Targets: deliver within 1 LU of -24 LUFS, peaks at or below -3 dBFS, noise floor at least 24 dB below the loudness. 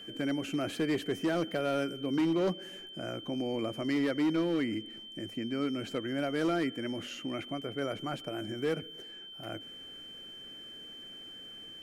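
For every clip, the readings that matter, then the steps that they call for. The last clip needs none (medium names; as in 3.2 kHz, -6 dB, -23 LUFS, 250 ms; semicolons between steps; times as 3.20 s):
clipped samples 1.1%; clipping level -24.0 dBFS; steady tone 3.1 kHz; tone level -45 dBFS; loudness -33.5 LUFS; peak level -24.0 dBFS; loudness target -24.0 LUFS
-> clip repair -24 dBFS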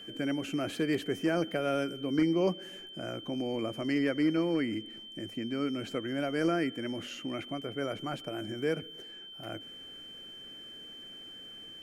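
clipped samples 0.0%; steady tone 3.1 kHz; tone level -45 dBFS
-> band-stop 3.1 kHz, Q 30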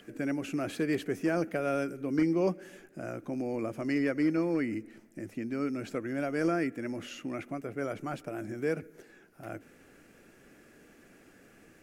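steady tone not found; loudness -33.0 LUFS; peak level -16.5 dBFS; loudness target -24.0 LUFS
-> trim +9 dB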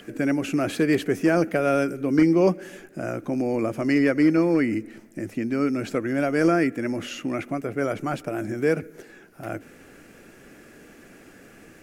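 loudness -24.0 LUFS; peak level -7.5 dBFS; noise floor -50 dBFS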